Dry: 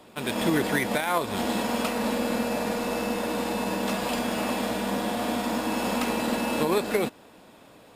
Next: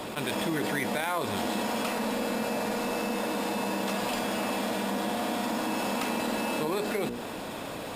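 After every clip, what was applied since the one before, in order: notches 60/120/180/240/300/360/420/480 Hz; fast leveller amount 70%; gain -6.5 dB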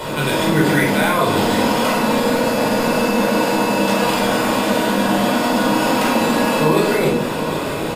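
echo 0.763 s -11.5 dB; shoebox room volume 1000 m³, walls furnished, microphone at 4.8 m; gain +6.5 dB

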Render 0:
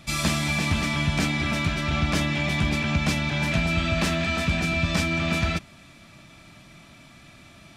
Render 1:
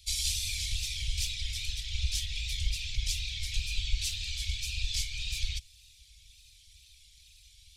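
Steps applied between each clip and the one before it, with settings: whisperiser; wow and flutter 86 cents; inverse Chebyshev band-stop 240–1000 Hz, stop band 70 dB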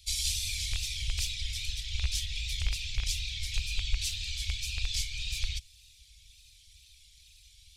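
rattling part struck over -28 dBFS, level -25 dBFS

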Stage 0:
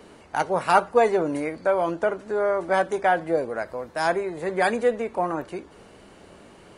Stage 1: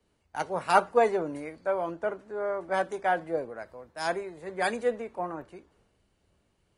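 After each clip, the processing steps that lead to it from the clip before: three-band expander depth 70%; gain -7 dB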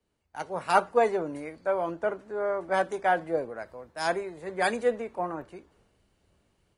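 AGC gain up to 8.5 dB; gain -6.5 dB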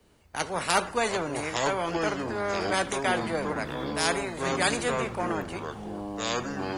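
echoes that change speed 0.573 s, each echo -6 st, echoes 3, each echo -6 dB; spectral compressor 2:1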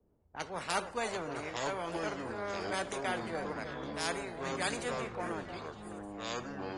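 low-pass opened by the level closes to 630 Hz, open at -24 dBFS; downsampling 22050 Hz; delay with a stepping band-pass 0.305 s, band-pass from 570 Hz, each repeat 1.4 oct, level -7 dB; gain -9 dB

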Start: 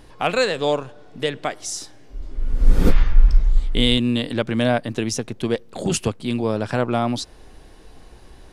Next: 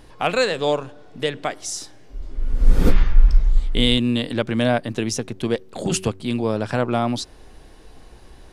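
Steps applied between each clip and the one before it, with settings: de-hum 94.48 Hz, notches 4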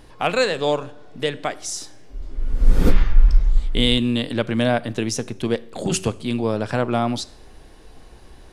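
Schroeder reverb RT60 0.6 s, combs from 27 ms, DRR 19 dB

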